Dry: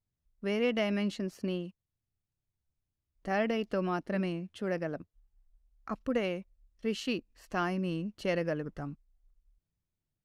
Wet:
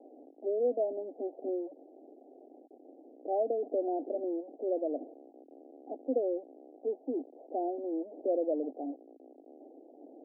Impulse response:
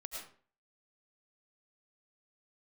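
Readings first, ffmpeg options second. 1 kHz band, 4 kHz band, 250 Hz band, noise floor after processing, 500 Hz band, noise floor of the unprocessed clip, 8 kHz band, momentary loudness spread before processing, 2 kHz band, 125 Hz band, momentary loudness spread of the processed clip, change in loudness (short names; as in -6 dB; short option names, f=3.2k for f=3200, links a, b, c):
-1.5 dB, under -40 dB, -4.0 dB, -58 dBFS, +2.5 dB, under -85 dBFS, under -25 dB, 12 LU, under -40 dB, under -30 dB, 22 LU, -1.0 dB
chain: -af "aeval=exprs='val(0)+0.5*0.0237*sgn(val(0))':c=same,asuperpass=centerf=450:order=20:qfactor=0.86"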